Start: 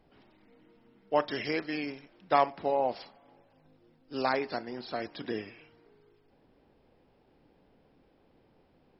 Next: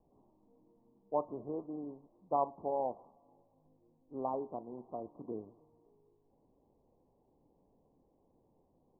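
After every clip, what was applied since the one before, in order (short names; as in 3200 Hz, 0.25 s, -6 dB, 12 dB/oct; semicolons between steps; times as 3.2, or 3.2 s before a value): steep low-pass 1100 Hz 96 dB/oct; gain -6.5 dB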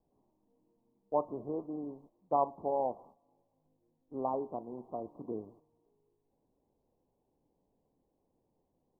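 gate -60 dBFS, range -9 dB; gain +2.5 dB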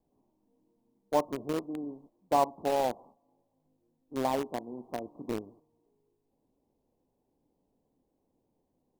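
bell 260 Hz +4 dB 0.65 oct; in parallel at -6 dB: bit-crush 5-bit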